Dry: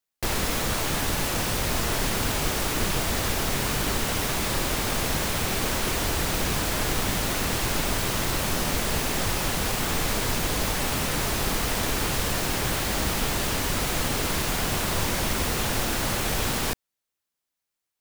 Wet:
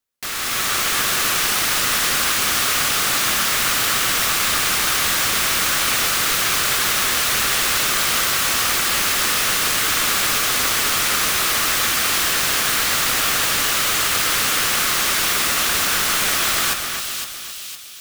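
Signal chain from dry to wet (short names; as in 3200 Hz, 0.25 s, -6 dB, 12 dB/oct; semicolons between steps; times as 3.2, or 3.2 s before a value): steep high-pass 1100 Hz 96 dB/oct; in parallel at -10.5 dB: sample-and-hold 17×; on the sum: AGC gain up to 7 dB; split-band echo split 2700 Hz, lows 0.259 s, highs 0.51 s, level -6 dB; gain +2 dB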